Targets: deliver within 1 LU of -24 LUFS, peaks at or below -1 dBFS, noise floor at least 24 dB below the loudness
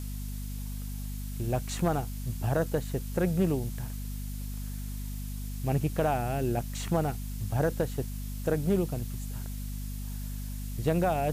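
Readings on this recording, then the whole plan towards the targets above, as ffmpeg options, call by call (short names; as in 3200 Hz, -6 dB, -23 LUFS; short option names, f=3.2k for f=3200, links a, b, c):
hum 50 Hz; harmonics up to 250 Hz; hum level -34 dBFS; noise floor -36 dBFS; noise floor target -56 dBFS; loudness -32.0 LUFS; peak -15.0 dBFS; loudness target -24.0 LUFS
-> -af "bandreject=f=50:t=h:w=4,bandreject=f=100:t=h:w=4,bandreject=f=150:t=h:w=4,bandreject=f=200:t=h:w=4,bandreject=f=250:t=h:w=4"
-af "afftdn=nr=20:nf=-36"
-af "volume=8dB"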